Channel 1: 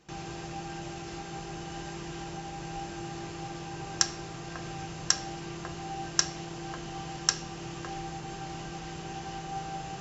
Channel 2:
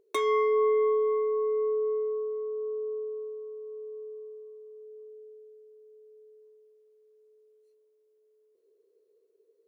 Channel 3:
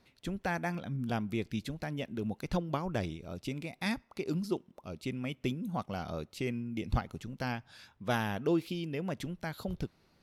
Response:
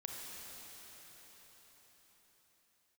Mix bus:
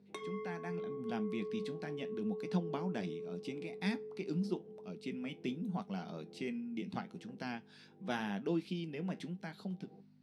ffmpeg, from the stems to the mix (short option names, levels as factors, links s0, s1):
-filter_complex "[0:a]lowpass=f=490:t=q:w=6.1,aeval=exprs='val(0)*pow(10,-18*(0.5-0.5*cos(2*PI*1.1*n/s))/20)':c=same,volume=0.15[s0];[1:a]acompressor=threshold=0.0158:ratio=6,volume=0.891[s1];[2:a]dynaudnorm=f=200:g=9:m=2.37,volume=0.376[s2];[s0][s1][s2]amix=inputs=3:normalize=0,aeval=exprs='val(0)+0.00316*(sin(2*PI*50*n/s)+sin(2*PI*2*50*n/s)/2+sin(2*PI*3*50*n/s)/3+sin(2*PI*4*50*n/s)/4+sin(2*PI*5*50*n/s)/5)':c=same,flanger=delay=9.8:depth=2.9:regen=-62:speed=0.83:shape=sinusoidal,highpass=f=170:w=0.5412,highpass=f=170:w=1.3066,equalizer=f=190:t=q:w=4:g=8,equalizer=f=560:t=q:w=4:g=-5,equalizer=f=1200:t=q:w=4:g=-5,equalizer=f=7000:t=q:w=4:g=-7,lowpass=f=9200:w=0.5412,lowpass=f=9200:w=1.3066"